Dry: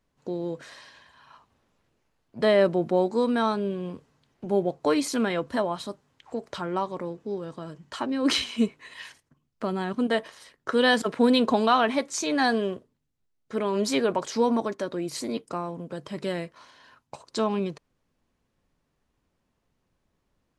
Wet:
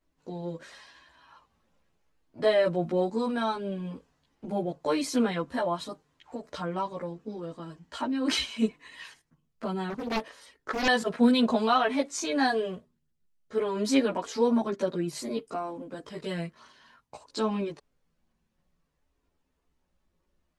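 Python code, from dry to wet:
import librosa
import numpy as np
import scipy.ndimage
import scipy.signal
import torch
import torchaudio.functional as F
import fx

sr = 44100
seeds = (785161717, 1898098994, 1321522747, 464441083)

y = fx.chorus_voices(x, sr, voices=6, hz=0.14, base_ms=15, depth_ms=3.6, mix_pct=60)
y = fx.doppler_dist(y, sr, depth_ms=0.87, at=(9.9, 10.88))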